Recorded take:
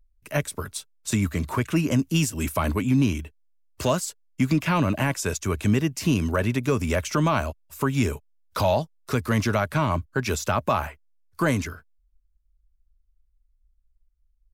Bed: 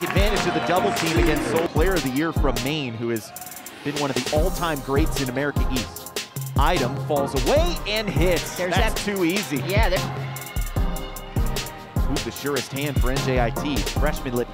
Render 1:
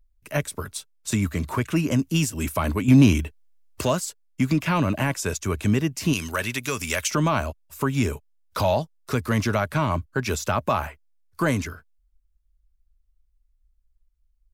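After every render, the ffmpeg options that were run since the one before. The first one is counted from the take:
ffmpeg -i in.wav -filter_complex "[0:a]asettb=1/sr,asplit=3[link_01][link_02][link_03];[link_01]atrim=end=2.884[link_04];[link_02]atrim=start=2.88:end=3.81,asetpts=PTS-STARTPTS,afade=type=in:duration=0.004:curve=qsin,afade=type=out:start_time=0.926:duration=0.004:curve=qsin,acontrast=83[link_05];[link_03]atrim=start=3.806[link_06];[link_04][link_05]acrossfade=duration=0.004:curve1=hsin:curve2=qsin[link_07];[link_07][link_06]acrossfade=duration=0.004:curve1=qsin:curve2=hsin,asettb=1/sr,asplit=3[link_08][link_09][link_10];[link_08]atrim=end=6.134[link_11];[link_09]atrim=start=6.13:end=7.11,asetpts=PTS-STARTPTS,afade=type=in:duration=0.004:curve=qsin,afade=type=out:start_time=0.976:duration=0.004:curve=qsin,tiltshelf=frequency=1200:gain=-9[link_12];[link_10]atrim=start=7.106[link_13];[link_11][link_12]acrossfade=duration=0.004:curve1=hsin:curve2=qsin[link_14];[link_14][link_13]acrossfade=duration=0.004:curve1=qsin:curve2=hsin" out.wav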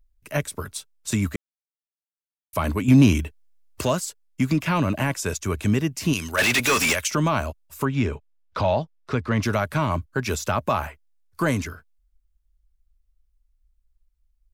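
ffmpeg -i in.wav -filter_complex "[0:a]asplit=3[link_01][link_02][link_03];[link_01]afade=type=out:start_time=6.37:duration=0.02[link_04];[link_02]asplit=2[link_05][link_06];[link_06]highpass=frequency=720:poles=1,volume=31dB,asoftclip=type=tanh:threshold=-11.5dB[link_07];[link_05][link_07]amix=inputs=2:normalize=0,lowpass=frequency=4600:poles=1,volume=-6dB,afade=type=in:start_time=6.37:duration=0.02,afade=type=out:start_time=6.92:duration=0.02[link_08];[link_03]afade=type=in:start_time=6.92:duration=0.02[link_09];[link_04][link_08][link_09]amix=inputs=3:normalize=0,asettb=1/sr,asplit=3[link_10][link_11][link_12];[link_10]atrim=end=7.854[link_13];[link_11]atrim=start=7.85:end=9.43,asetpts=PTS-STARTPTS,afade=type=in:duration=0.004:curve=qsin,afade=type=out:start_time=1.576:duration=0.004:curve=qsin,lowpass=3600[link_14];[link_12]atrim=start=9.426[link_15];[link_13][link_14]acrossfade=duration=0.004:curve1=hsin:curve2=qsin[link_16];[link_16][link_15]acrossfade=duration=0.004:curve1=qsin:curve2=hsin,asplit=3[link_17][link_18][link_19];[link_17]atrim=end=1.36,asetpts=PTS-STARTPTS,afade=type=out:start_time=1.356:duration=0.004:curve=hsin[link_20];[link_18]atrim=start=1.36:end=2.53,asetpts=PTS-STARTPTS,volume=0[link_21];[link_19]atrim=start=2.53,asetpts=PTS-STARTPTS,afade=type=in:duration=0.004:curve=hsin[link_22];[link_20][link_21][link_22]concat=n=3:v=0:a=1" out.wav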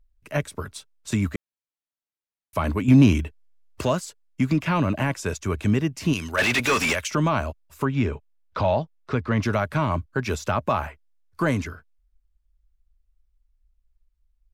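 ffmpeg -i in.wav -af "lowpass=frequency=3700:poles=1" out.wav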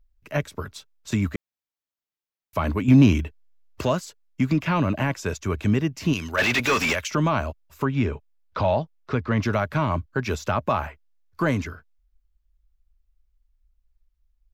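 ffmpeg -i in.wav -af "equalizer=frequency=9200:width_type=o:width=0.35:gain=-12" out.wav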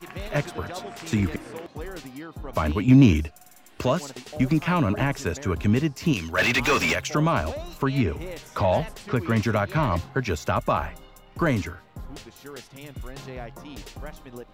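ffmpeg -i in.wav -i bed.wav -filter_complex "[1:a]volume=-16dB[link_01];[0:a][link_01]amix=inputs=2:normalize=0" out.wav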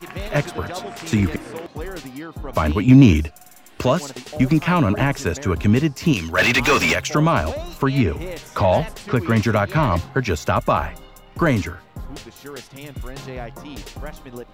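ffmpeg -i in.wav -af "volume=5dB,alimiter=limit=-2dB:level=0:latency=1" out.wav

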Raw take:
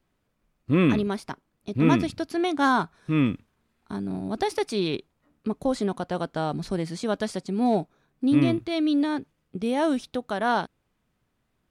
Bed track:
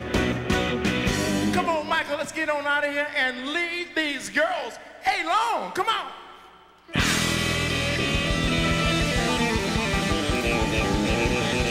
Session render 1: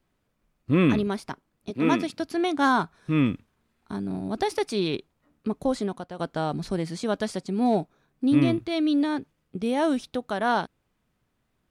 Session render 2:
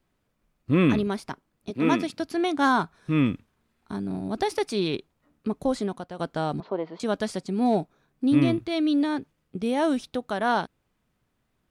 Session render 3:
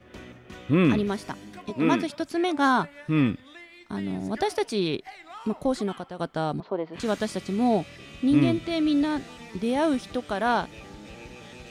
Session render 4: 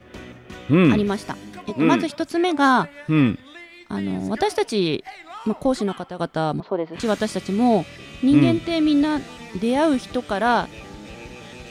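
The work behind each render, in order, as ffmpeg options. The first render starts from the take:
ffmpeg -i in.wav -filter_complex "[0:a]asettb=1/sr,asplit=3[link_01][link_02][link_03];[link_01]atrim=end=1.704[link_04];[link_02]atrim=start=1.7:end=2.2,asetpts=PTS-STARTPTS,afade=type=in:duration=0.004:curve=qsin,afade=type=out:start_time=0.496:duration=0.004:curve=qsin,highpass=260[link_05];[link_03]atrim=start=2.196[link_06];[link_04][link_05]acrossfade=duration=0.004:curve1=hsin:curve2=qsin[link_07];[link_07][link_06]acrossfade=duration=0.004:curve1=qsin:curve2=hsin,asplit=2[link_08][link_09];[link_08]atrim=end=6.19,asetpts=PTS-STARTPTS,afade=type=out:start_time=5.7:duration=0.49:silence=0.251189[link_10];[link_09]atrim=start=6.19,asetpts=PTS-STARTPTS,afade=type=in:duration=0.004:curve=hsin:silence=0.251189[link_11];[link_10][link_11]concat=n=2:v=0:a=1" out.wav
ffmpeg -i in.wav -filter_complex "[0:a]asettb=1/sr,asplit=3[link_01][link_02][link_03];[link_01]atrim=end=6.604[link_04];[link_02]atrim=start=6.6:end=7,asetpts=PTS-STARTPTS,afade=type=in:duration=0.004:curve=qsin,afade=type=out:start_time=0.396:duration=0.004:curve=qsin,highpass=360,equalizer=frequency=440:width_type=q:width=4:gain=6,equalizer=frequency=630:width_type=q:width=4:gain=6,equalizer=frequency=990:width_type=q:width=4:gain=9,equalizer=frequency=1700:width_type=q:width=4:gain=-8,equalizer=frequency=2400:width_type=q:width=4:gain=-8,lowpass=frequency=2700:width=0.5412,lowpass=frequency=2700:width=1.3066[link_05];[link_03]atrim=start=6.996[link_06];[link_04][link_05]acrossfade=duration=0.004:curve1=hsin:curve2=qsin[link_07];[link_07][link_06]acrossfade=duration=0.004:curve1=qsin:curve2=hsin" out.wav
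ffmpeg -i in.wav -i bed.wav -filter_complex "[1:a]volume=-20.5dB[link_01];[0:a][link_01]amix=inputs=2:normalize=0" out.wav
ffmpeg -i in.wav -af "volume=5dB" out.wav

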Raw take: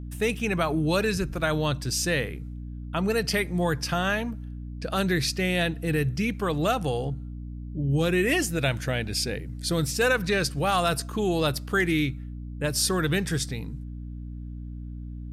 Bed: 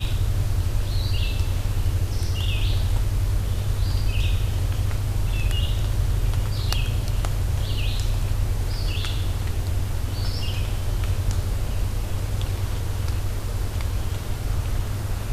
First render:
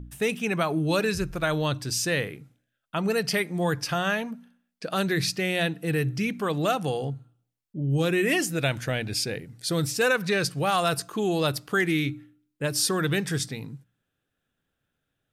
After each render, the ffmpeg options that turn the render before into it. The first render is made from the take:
ffmpeg -i in.wav -af "bandreject=frequency=60:width_type=h:width=4,bandreject=frequency=120:width_type=h:width=4,bandreject=frequency=180:width_type=h:width=4,bandreject=frequency=240:width_type=h:width=4,bandreject=frequency=300:width_type=h:width=4" out.wav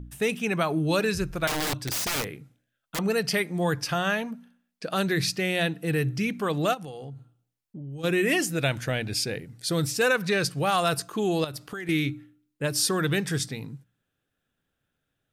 ffmpeg -i in.wav -filter_complex "[0:a]asettb=1/sr,asplit=3[link_01][link_02][link_03];[link_01]atrim=end=1.474[link_04];[link_02]atrim=start=1.47:end=2.99,asetpts=PTS-STARTPTS,afade=type=in:duration=0.004:curve=qsin,afade=type=out:start_time=1.516:duration=0.004:curve=qsin,aeval=exprs='(mod(14.1*val(0)+1,2)-1)/14.1':channel_layout=same[link_05];[link_03]atrim=start=2.986[link_06];[link_04][link_05]acrossfade=duration=0.004:curve1=hsin:curve2=qsin[link_07];[link_07][link_06]acrossfade=duration=0.004:curve1=qsin:curve2=hsin,asplit=3[link_08][link_09][link_10];[link_08]afade=type=out:start_time=6.73:duration=0.02[link_11];[link_09]acompressor=threshold=-36dB:ratio=6:attack=3.2:release=140:knee=1:detection=peak,afade=type=in:start_time=6.73:duration=0.02,afade=type=out:start_time=8.03:duration=0.02[link_12];[link_10]afade=type=in:start_time=8.03:duration=0.02[link_13];[link_11][link_12][link_13]amix=inputs=3:normalize=0,asettb=1/sr,asplit=3[link_14][link_15][link_16];[link_14]atrim=end=11.444[link_17];[link_15]atrim=start=11.44:end=11.89,asetpts=PTS-STARTPTS,afade=type=in:duration=0.004:curve=qsin,afade=type=out:start_time=0.446:duration=0.004:curve=qsin,acompressor=threshold=-32dB:ratio=8:attack=3.2:release=140:knee=1:detection=peak[link_18];[link_16]atrim=start=11.886[link_19];[link_17][link_18]acrossfade=duration=0.004:curve1=hsin:curve2=qsin[link_20];[link_20][link_19]acrossfade=duration=0.004:curve1=qsin:curve2=hsin" out.wav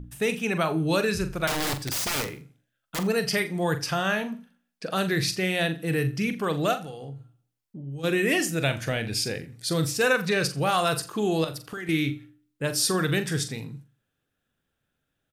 ffmpeg -i in.wav -filter_complex "[0:a]asplit=2[link_01][link_02];[link_02]adelay=43,volume=-10dB[link_03];[link_01][link_03]amix=inputs=2:normalize=0,aecho=1:1:85|170:0.1|0.028" out.wav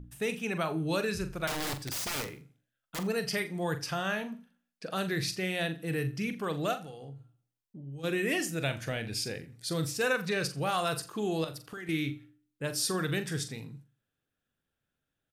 ffmpeg -i in.wav -af "volume=-6.5dB" out.wav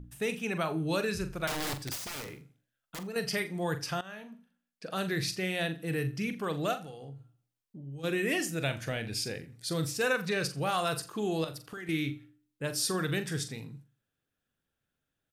ffmpeg -i in.wav -filter_complex "[0:a]asettb=1/sr,asplit=3[link_01][link_02][link_03];[link_01]atrim=end=1.954[link_04];[link_02]atrim=start=1.95:end=3.16,asetpts=PTS-STARTPTS,afade=type=in:duration=0.004:curve=qsin,afade=type=out:start_time=1.206:duration=0.004:curve=qsin,acompressor=threshold=-37dB:ratio=4:attack=3.2:release=140:knee=1:detection=peak[link_05];[link_03]atrim=start=3.156[link_06];[link_04][link_05]acrossfade=duration=0.004:curve1=hsin:curve2=qsin[link_07];[link_07][link_06]acrossfade=duration=0.004:curve1=qsin:curve2=hsin,asplit=2[link_08][link_09];[link_08]atrim=end=4.01,asetpts=PTS-STARTPTS,afade=type=out:start_time=4.006:duration=0.004:curve=hsin:silence=0.141254[link_10];[link_09]atrim=start=4.01,asetpts=PTS-STARTPTS,afade=type=in:duration=1.07:silence=0.141254[link_11];[link_10][link_11]concat=n=2:v=0:a=1" out.wav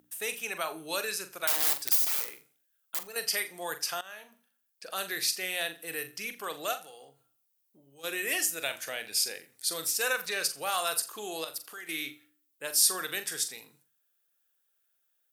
ffmpeg -i in.wav -af "highpass=570,aemphasis=mode=production:type=50fm" out.wav

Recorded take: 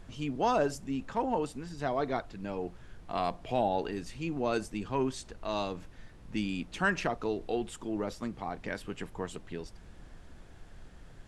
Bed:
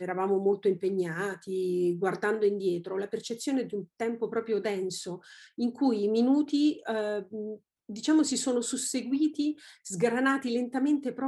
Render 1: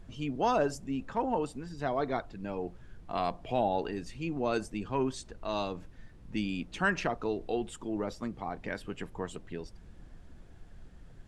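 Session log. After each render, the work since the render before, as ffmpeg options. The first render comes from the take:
ffmpeg -i in.wav -af "afftdn=noise_reduction=6:noise_floor=-53" out.wav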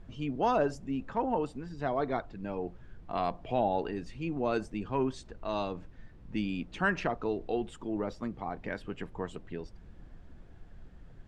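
ffmpeg -i in.wav -af "aemphasis=mode=reproduction:type=50fm" out.wav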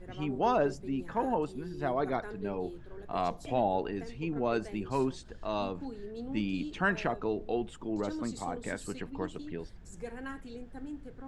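ffmpeg -i in.wav -i bed.wav -filter_complex "[1:a]volume=-16dB[link_01];[0:a][link_01]amix=inputs=2:normalize=0" out.wav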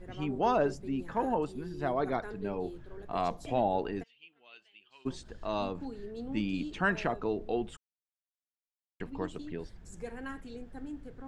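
ffmpeg -i in.wav -filter_complex "[0:a]asplit=3[link_01][link_02][link_03];[link_01]afade=type=out:start_time=4.02:duration=0.02[link_04];[link_02]bandpass=frequency=3000:width_type=q:width=8,afade=type=in:start_time=4.02:duration=0.02,afade=type=out:start_time=5.05:duration=0.02[link_05];[link_03]afade=type=in:start_time=5.05:duration=0.02[link_06];[link_04][link_05][link_06]amix=inputs=3:normalize=0,asplit=3[link_07][link_08][link_09];[link_07]atrim=end=7.77,asetpts=PTS-STARTPTS,afade=type=out:start_time=7.766:duration=0.004:curve=hsin[link_10];[link_08]atrim=start=7.77:end=9,asetpts=PTS-STARTPTS,volume=0[link_11];[link_09]atrim=start=9,asetpts=PTS-STARTPTS,afade=type=in:duration=0.004:curve=hsin[link_12];[link_10][link_11][link_12]concat=n=3:v=0:a=1" out.wav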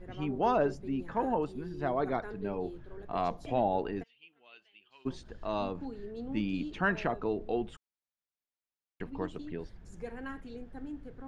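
ffmpeg -i in.wav -af "highshelf=frequency=5500:gain=-9,bandreject=frequency=7800:width=9.4" out.wav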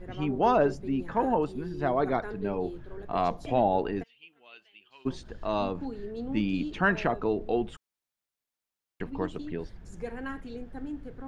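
ffmpeg -i in.wav -af "volume=4.5dB" out.wav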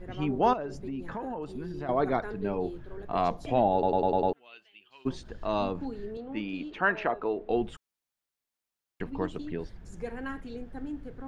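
ffmpeg -i in.wav -filter_complex "[0:a]asettb=1/sr,asplit=3[link_01][link_02][link_03];[link_01]atrim=end=0.534[link_04];[link_02]atrim=start=0.53:end=1.89,asetpts=PTS-STARTPTS,afade=type=in:duration=0.004:curve=qsin,afade=type=out:start_time=1.356:duration=0.004:curve=qsin,acompressor=threshold=-32dB:ratio=6:attack=3.2:release=140:knee=1:detection=peak[link_05];[link_03]atrim=start=1.886[link_06];[link_04][link_05]acrossfade=duration=0.004:curve1=hsin:curve2=qsin[link_07];[link_07][link_06]acrossfade=duration=0.004:curve1=qsin:curve2=hsin,asettb=1/sr,asplit=3[link_08][link_09][link_10];[link_08]atrim=end=6.174[link_11];[link_09]atrim=start=6.17:end=7.5,asetpts=PTS-STARTPTS,afade=type=in:duration=0.004:curve=qsin,afade=type=out:start_time=1.326:duration=0.004:curve=qsin,bass=frequency=250:gain=-14,treble=frequency=4000:gain=-12[link_12];[link_10]atrim=start=7.496[link_13];[link_11][link_12]acrossfade=duration=0.004:curve1=hsin:curve2=qsin[link_14];[link_14][link_13]acrossfade=duration=0.004:curve1=qsin:curve2=hsin,asplit=7[link_15][link_16][link_17][link_18][link_19][link_20][link_21];[link_15]atrim=end=3.832[link_22];[link_16]atrim=start=3.728:end=3.832[link_23];[link_17]atrim=start=3.728:end=3.832[link_24];[link_18]atrim=start=3.728:end=3.832[link_25];[link_19]atrim=start=3.728:end=3.832[link_26];[link_20]atrim=start=3.728:end=3.832[link_27];[link_21]atrim=start=4.328[link_28];[link_22][link_23]acrossfade=duration=0.004:curve1=hsin:curve2=hsin[link_29];[link_29][link_24]acrossfade=duration=0.004:curve1=hsin:curve2=hsin[link_30];[link_30][link_25]acrossfade=duration=0.004:curve1=hsin:curve2=hsin[link_31];[link_31][link_26]acrossfade=duration=0.004:curve1=hsin:curve2=hsin[link_32];[link_32][link_27]acrossfade=duration=0.004:curve1=hsin:curve2=hsin[link_33];[link_33][link_28]acrossfade=duration=0.004:curve1=hsin:curve2=hsin" out.wav

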